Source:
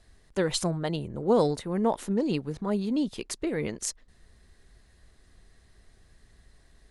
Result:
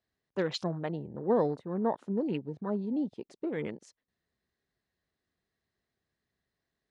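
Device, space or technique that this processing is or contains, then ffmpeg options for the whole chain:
over-cleaned archive recording: -af "highpass=130,lowpass=5.4k,afwtdn=0.01,volume=-4dB"

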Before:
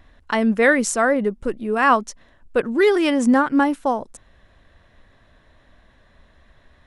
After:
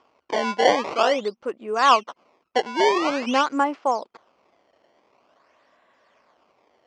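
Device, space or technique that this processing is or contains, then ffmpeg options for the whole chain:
circuit-bent sampling toy: -af "acrusher=samples=20:mix=1:aa=0.000001:lfo=1:lforange=32:lforate=0.47,highpass=460,equalizer=f=1.1k:t=q:w=4:g=3,equalizer=f=1.7k:t=q:w=4:g=-6,equalizer=f=3.8k:t=q:w=4:g=-8,lowpass=f=5.1k:w=0.5412,lowpass=f=5.1k:w=1.3066"

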